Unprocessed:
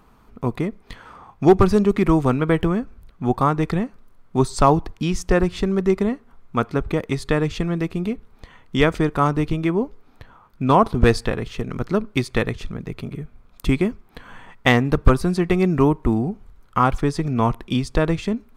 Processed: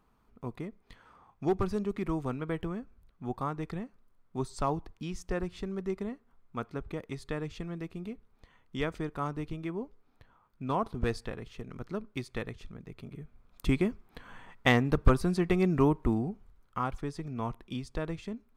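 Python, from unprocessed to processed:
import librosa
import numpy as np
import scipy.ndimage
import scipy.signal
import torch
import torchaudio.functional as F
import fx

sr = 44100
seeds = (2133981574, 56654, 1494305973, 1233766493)

y = fx.gain(x, sr, db=fx.line((12.93, -15.5), (13.67, -8.0), (16.04, -8.0), (16.89, -15.5)))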